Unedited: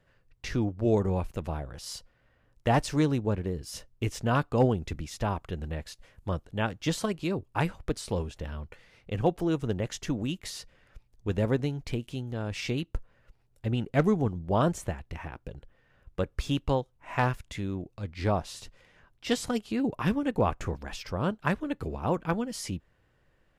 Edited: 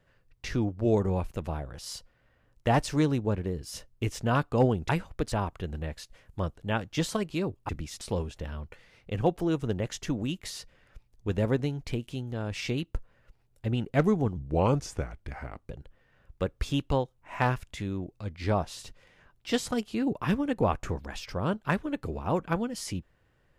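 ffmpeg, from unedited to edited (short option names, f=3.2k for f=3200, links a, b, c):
-filter_complex "[0:a]asplit=7[a][b][c][d][e][f][g];[a]atrim=end=4.892[h];[b]atrim=start=7.578:end=8.012[i];[c]atrim=start=5.208:end=7.582[j];[d]atrim=start=4.888:end=5.212[k];[e]atrim=start=8.008:end=14.374[l];[f]atrim=start=14.37:end=15.47,asetpts=PTS-STARTPTS,asetrate=36603,aresample=44100[m];[g]atrim=start=15.466[n];[h][i]acrossfade=d=0.004:c1=hsin:c2=hsin[o];[o][j]acrossfade=d=0.004:c1=hsin:c2=hsin[p];[p][k]acrossfade=d=0.004:c1=hsin:c2=hsin[q];[q][l]acrossfade=d=0.004:c1=hsin:c2=hsin[r];[r][m]acrossfade=d=0.004:c1=hsin:c2=hsin[s];[s][n]acrossfade=d=0.004:c1=hsin:c2=hsin"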